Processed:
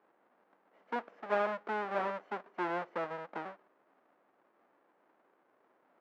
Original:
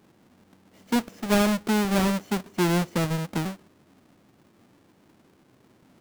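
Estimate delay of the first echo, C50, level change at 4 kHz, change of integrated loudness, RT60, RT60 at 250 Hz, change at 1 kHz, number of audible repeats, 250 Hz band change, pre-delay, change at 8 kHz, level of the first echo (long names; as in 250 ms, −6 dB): no echo audible, no reverb audible, −21.0 dB, −11.5 dB, no reverb audible, no reverb audible, −5.0 dB, no echo audible, −21.5 dB, no reverb audible, below −30 dB, no echo audible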